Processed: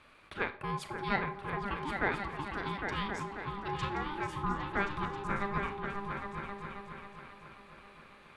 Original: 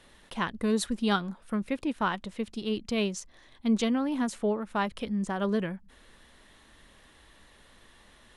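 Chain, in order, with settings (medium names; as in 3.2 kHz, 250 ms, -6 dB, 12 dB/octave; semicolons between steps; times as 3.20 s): three-band isolator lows -18 dB, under 430 Hz, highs -15 dB, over 2.6 kHz; in parallel at -2 dB: compression, threshold -45 dBFS, peak gain reduction 20 dB; on the sum: delay with an opening low-pass 269 ms, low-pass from 200 Hz, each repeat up 2 oct, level 0 dB; ring modulator 600 Hz; Schroeder reverb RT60 0.4 s, combs from 28 ms, DRR 11.5 dB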